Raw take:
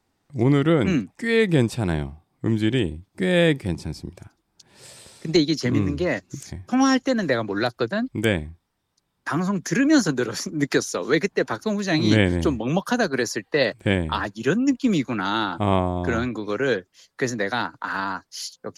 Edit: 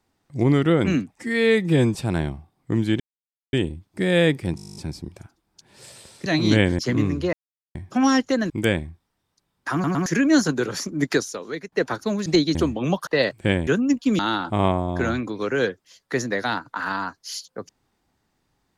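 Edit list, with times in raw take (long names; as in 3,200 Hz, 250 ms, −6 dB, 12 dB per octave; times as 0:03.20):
0:01.17–0:01.69: time-stretch 1.5×
0:02.74: splice in silence 0.53 s
0:03.77: stutter 0.02 s, 11 plays
0:05.27–0:05.56: swap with 0:11.86–0:12.39
0:06.10–0:06.52: silence
0:07.27–0:08.10: remove
0:09.33: stutter in place 0.11 s, 3 plays
0:10.75–0:11.32: fade out quadratic, to −14 dB
0:12.91–0:13.48: remove
0:14.08–0:14.45: remove
0:14.97–0:15.27: remove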